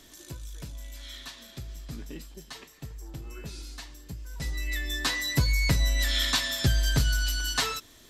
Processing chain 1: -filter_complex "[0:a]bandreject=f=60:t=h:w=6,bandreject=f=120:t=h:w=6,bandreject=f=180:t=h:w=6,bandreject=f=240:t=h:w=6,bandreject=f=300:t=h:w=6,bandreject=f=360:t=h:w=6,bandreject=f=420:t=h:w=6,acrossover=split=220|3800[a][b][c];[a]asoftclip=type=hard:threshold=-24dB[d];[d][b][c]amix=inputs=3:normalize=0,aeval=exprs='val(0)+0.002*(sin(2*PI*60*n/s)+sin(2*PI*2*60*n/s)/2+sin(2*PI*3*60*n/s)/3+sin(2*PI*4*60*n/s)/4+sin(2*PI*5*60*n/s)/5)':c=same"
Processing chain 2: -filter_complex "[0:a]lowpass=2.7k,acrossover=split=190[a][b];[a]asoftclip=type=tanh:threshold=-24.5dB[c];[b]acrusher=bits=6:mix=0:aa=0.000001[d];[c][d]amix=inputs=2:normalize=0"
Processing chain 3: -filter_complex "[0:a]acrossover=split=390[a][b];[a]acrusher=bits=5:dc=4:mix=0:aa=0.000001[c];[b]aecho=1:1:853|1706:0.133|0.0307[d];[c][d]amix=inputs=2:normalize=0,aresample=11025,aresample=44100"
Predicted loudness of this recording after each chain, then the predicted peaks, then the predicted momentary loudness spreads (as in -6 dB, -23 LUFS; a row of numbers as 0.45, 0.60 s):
-27.5, -32.0, -26.5 LUFS; -12.5, -15.0, -12.5 dBFS; 18, 18, 22 LU